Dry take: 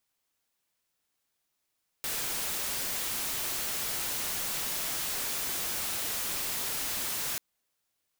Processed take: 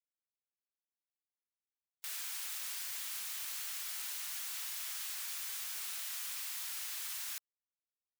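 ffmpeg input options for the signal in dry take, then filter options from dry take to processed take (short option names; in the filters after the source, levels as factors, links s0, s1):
-f lavfi -i "anoisesrc=c=white:a=0.0388:d=5.34:r=44100:seed=1"
-af "highpass=1300,afftfilt=real='re*gte(hypot(re,im),0.00224)':imag='im*gte(hypot(re,im),0.00224)':win_size=1024:overlap=0.75,alimiter=level_in=3.16:limit=0.0631:level=0:latency=1,volume=0.316"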